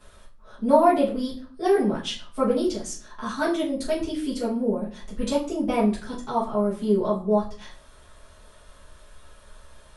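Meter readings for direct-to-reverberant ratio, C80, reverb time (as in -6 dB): -10.0 dB, 14.0 dB, 0.45 s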